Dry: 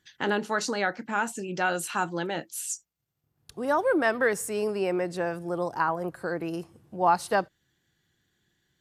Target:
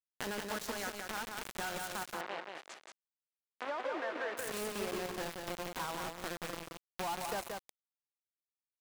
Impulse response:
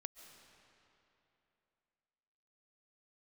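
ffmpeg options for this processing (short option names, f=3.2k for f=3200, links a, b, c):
-filter_complex "[0:a]aeval=exprs='val(0)+0.5*0.0158*sgn(val(0))':c=same[a];[1:a]atrim=start_sample=2205,afade=t=out:st=0.36:d=0.01,atrim=end_sample=16317[b];[a][b]afir=irnorm=-1:irlink=0,aeval=exprs='val(0)+0.000794*(sin(2*PI*50*n/s)+sin(2*PI*2*50*n/s)/2+sin(2*PI*3*50*n/s)/3+sin(2*PI*4*50*n/s)/4+sin(2*PI*5*50*n/s)/5)':c=same,acrusher=bits=4:mix=0:aa=0.000001,asoftclip=type=tanh:threshold=-28.5dB,asettb=1/sr,asplit=3[c][d][e];[c]atrim=end=2.034[f];[d]atrim=start=2.03:end=4.37,asetpts=PTS-STARTPTS,afade=t=in:d=0.004:c=qsin,afade=t=out:st=2.336:d=0.004:c=qsin,highpass=420,lowpass=2.4k[g];[e]atrim=start=4.366[h];[f][g]acrossfade=d=0.004:c1=hsin:c2=qsin[i];[i][h]acrossfade=d=0.004:c1=qsin:c2=hsin,acompressor=threshold=-43dB:ratio=6,aecho=1:1:178:0.596,volume=6.5dB"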